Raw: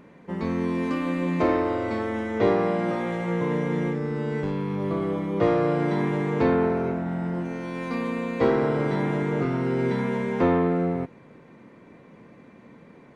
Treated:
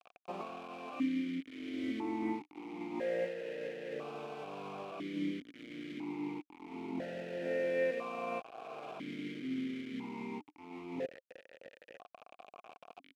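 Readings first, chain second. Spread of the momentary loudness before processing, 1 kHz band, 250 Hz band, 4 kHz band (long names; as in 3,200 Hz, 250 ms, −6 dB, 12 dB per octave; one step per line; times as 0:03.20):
7 LU, −15.0 dB, −14.0 dB, −7.5 dB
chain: compressor whose output falls as the input rises −30 dBFS, ratio −0.5
echo with shifted repeats 107 ms, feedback 39%, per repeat −82 Hz, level −19.5 dB
bit reduction 6 bits
formant filter that steps through the vowels 1 Hz
level +2.5 dB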